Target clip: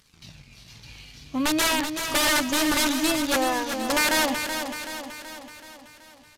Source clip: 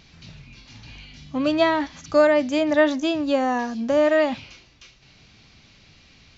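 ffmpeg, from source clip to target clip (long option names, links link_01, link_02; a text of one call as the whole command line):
ffmpeg -i in.wav -filter_complex "[0:a]aemphasis=mode=production:type=50fm,asplit=2[link_01][link_02];[link_02]acontrast=74,volume=0dB[link_03];[link_01][link_03]amix=inputs=2:normalize=0,aeval=exprs='sgn(val(0))*max(abs(val(0))-0.0112,0)':channel_layout=same,flanger=delay=0.6:depth=2.4:regen=-54:speed=0.36:shape=triangular,aeval=exprs='(mod(3.16*val(0)+1,2)-1)/3.16':channel_layout=same,asplit=2[link_04][link_05];[link_05]aecho=0:1:378|756|1134|1512|1890|2268|2646:0.422|0.232|0.128|0.0702|0.0386|0.0212|0.0117[link_06];[link_04][link_06]amix=inputs=2:normalize=0,acrusher=bits=8:mode=log:mix=0:aa=0.000001,aresample=32000,aresample=44100,volume=-7dB" out.wav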